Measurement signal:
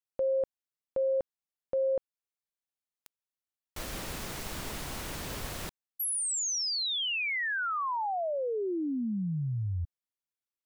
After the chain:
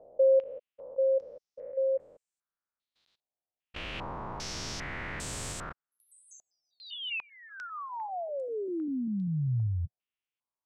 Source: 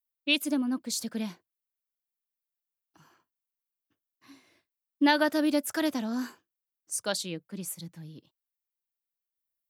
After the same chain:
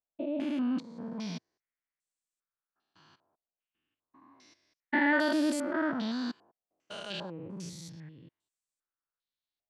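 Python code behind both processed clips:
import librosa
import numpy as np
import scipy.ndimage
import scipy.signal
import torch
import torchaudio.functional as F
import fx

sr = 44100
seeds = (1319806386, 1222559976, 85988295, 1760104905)

y = fx.spec_steps(x, sr, hold_ms=200)
y = fx.dynamic_eq(y, sr, hz=120.0, q=1.8, threshold_db=-50.0, ratio=4.0, max_db=4)
y = fx.filter_held_lowpass(y, sr, hz=2.5, low_hz=700.0, high_hz=7900.0)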